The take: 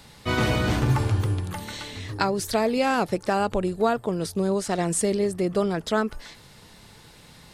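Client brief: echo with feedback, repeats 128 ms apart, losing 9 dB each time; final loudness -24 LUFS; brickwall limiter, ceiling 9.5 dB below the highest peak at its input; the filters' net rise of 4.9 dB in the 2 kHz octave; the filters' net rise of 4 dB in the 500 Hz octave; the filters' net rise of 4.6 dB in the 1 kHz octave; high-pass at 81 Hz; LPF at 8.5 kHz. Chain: high-pass 81 Hz; low-pass 8.5 kHz; peaking EQ 500 Hz +4 dB; peaking EQ 1 kHz +3.5 dB; peaking EQ 2 kHz +5 dB; peak limiter -13.5 dBFS; feedback delay 128 ms, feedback 35%, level -9 dB

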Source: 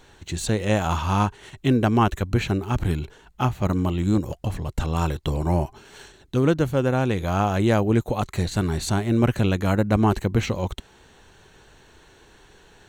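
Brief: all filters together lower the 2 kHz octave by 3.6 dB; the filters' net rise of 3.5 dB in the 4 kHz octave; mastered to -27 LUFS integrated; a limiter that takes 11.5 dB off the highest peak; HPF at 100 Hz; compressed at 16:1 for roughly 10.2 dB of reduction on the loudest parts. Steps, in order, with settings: high-pass 100 Hz; peaking EQ 2 kHz -7 dB; peaking EQ 4 kHz +6.5 dB; compression 16:1, threshold -25 dBFS; trim +9.5 dB; peak limiter -16.5 dBFS

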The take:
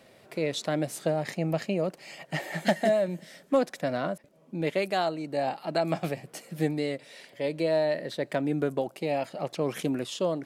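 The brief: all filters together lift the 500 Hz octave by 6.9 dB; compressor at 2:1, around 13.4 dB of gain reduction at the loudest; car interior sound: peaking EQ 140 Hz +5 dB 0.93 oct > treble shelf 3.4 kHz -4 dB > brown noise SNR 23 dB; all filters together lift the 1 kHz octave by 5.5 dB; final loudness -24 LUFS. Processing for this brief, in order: peaking EQ 500 Hz +7 dB; peaking EQ 1 kHz +4.5 dB; compression 2:1, threshold -39 dBFS; peaking EQ 140 Hz +5 dB 0.93 oct; treble shelf 3.4 kHz -4 dB; brown noise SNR 23 dB; trim +11 dB

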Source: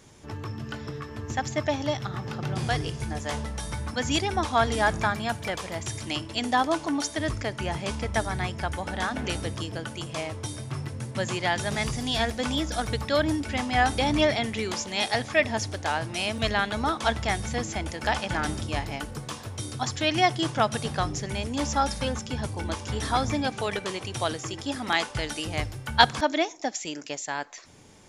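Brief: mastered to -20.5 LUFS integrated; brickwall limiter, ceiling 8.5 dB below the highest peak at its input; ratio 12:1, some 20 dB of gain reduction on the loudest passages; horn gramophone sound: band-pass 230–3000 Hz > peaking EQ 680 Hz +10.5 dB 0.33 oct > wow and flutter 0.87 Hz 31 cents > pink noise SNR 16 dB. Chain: compression 12:1, threshold -31 dBFS; peak limiter -24.5 dBFS; band-pass 230–3000 Hz; peaking EQ 680 Hz +10.5 dB 0.33 oct; wow and flutter 0.87 Hz 31 cents; pink noise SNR 16 dB; trim +15.5 dB

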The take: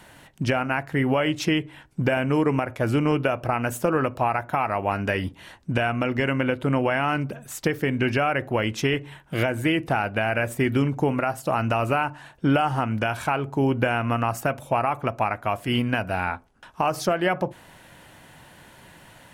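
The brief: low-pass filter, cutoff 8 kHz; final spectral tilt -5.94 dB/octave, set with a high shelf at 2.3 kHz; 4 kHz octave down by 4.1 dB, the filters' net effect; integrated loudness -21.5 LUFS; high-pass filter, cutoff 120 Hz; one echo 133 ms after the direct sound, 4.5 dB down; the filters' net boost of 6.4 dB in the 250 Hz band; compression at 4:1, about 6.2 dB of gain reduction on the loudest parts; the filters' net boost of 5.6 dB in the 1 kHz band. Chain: high-pass 120 Hz; low-pass 8 kHz; peaking EQ 250 Hz +7.5 dB; peaking EQ 1 kHz +8 dB; treble shelf 2.3 kHz -3.5 dB; peaking EQ 4 kHz -4 dB; compression 4:1, threshold -19 dBFS; delay 133 ms -4.5 dB; trim +2 dB

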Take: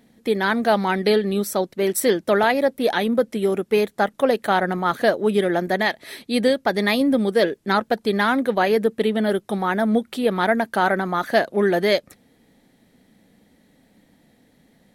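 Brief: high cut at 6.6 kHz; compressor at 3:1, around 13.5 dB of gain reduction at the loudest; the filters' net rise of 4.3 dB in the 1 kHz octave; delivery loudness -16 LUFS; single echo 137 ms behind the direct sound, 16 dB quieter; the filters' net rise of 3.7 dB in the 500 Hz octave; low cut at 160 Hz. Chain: high-pass 160 Hz; low-pass 6.6 kHz; peaking EQ 500 Hz +3.5 dB; peaking EQ 1 kHz +4.5 dB; compression 3:1, threshold -29 dBFS; delay 137 ms -16 dB; trim +13.5 dB

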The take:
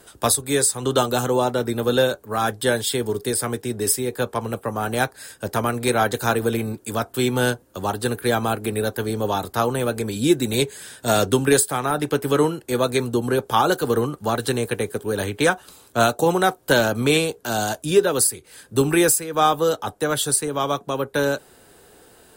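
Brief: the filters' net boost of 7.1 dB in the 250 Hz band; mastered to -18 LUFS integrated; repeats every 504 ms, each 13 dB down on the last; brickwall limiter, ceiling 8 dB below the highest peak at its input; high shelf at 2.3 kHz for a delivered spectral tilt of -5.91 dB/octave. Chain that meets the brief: peaking EQ 250 Hz +9 dB; treble shelf 2.3 kHz -8 dB; peak limiter -9 dBFS; feedback delay 504 ms, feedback 22%, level -13 dB; trim +3 dB

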